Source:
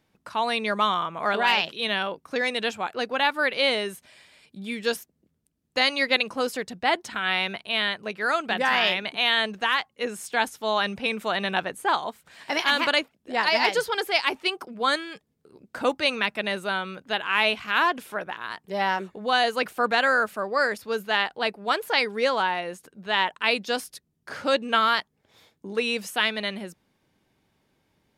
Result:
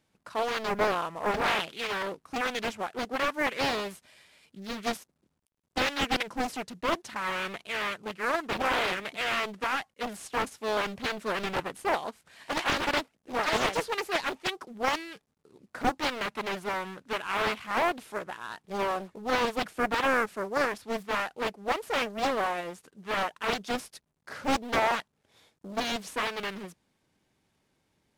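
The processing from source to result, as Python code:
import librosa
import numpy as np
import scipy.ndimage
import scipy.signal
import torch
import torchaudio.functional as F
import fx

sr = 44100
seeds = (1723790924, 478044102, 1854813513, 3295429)

y = fx.cvsd(x, sr, bps=64000)
y = fx.doppler_dist(y, sr, depth_ms=0.96)
y = y * 10.0 ** (-4.5 / 20.0)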